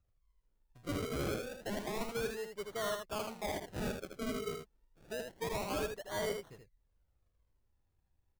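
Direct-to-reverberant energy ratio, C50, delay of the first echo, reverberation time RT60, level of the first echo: no reverb, no reverb, 79 ms, no reverb, -5.5 dB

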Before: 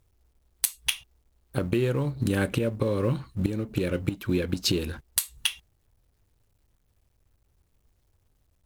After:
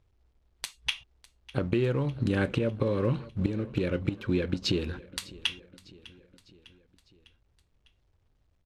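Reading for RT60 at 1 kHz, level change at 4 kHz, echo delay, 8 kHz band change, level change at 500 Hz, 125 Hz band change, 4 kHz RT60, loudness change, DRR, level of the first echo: no reverb, -3.0 dB, 602 ms, -13.5 dB, -1.5 dB, -1.5 dB, no reverb, -2.5 dB, no reverb, -20.5 dB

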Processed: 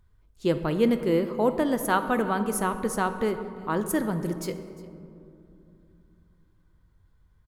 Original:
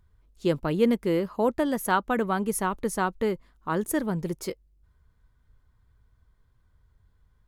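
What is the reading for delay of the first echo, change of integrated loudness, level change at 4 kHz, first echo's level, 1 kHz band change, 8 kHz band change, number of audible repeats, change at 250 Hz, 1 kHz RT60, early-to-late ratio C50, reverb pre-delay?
353 ms, +0.5 dB, +0.5 dB, -21.0 dB, +0.5 dB, 0.0 dB, 1, +1.0 dB, 2.4 s, 10.0 dB, 3 ms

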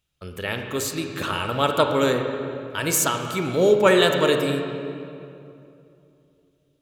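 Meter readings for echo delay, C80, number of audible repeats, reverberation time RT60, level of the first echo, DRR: no echo, 6.0 dB, no echo, 2.7 s, no echo, 4.0 dB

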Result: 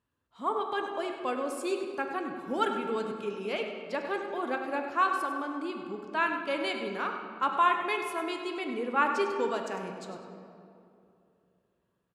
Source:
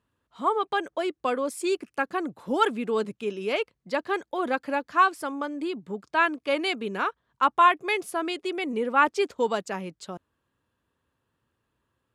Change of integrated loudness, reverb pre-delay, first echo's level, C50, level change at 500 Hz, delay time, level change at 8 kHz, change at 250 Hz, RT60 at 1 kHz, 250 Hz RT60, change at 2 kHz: -4.5 dB, 6 ms, -10.5 dB, 4.5 dB, -4.5 dB, 100 ms, -6.0 dB, -4.5 dB, 2.5 s, 3.2 s, -5.0 dB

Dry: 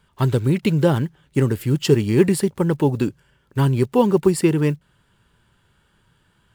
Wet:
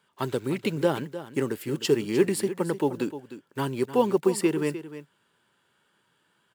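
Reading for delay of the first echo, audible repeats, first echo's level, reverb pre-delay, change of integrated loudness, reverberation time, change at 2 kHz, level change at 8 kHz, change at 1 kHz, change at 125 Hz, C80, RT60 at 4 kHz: 304 ms, 1, -13.0 dB, no reverb, -7.5 dB, no reverb, -4.5 dB, -4.5 dB, -4.5 dB, -15.5 dB, no reverb, no reverb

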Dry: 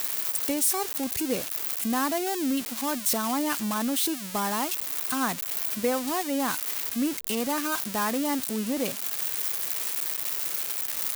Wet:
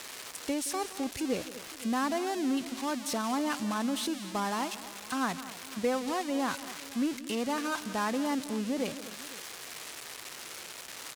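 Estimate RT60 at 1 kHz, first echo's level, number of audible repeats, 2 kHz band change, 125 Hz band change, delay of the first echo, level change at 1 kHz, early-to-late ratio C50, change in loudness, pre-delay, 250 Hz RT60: no reverb, -16.5 dB, 3, -3.5 dB, -3.0 dB, 171 ms, -3.0 dB, no reverb, -6.5 dB, no reverb, no reverb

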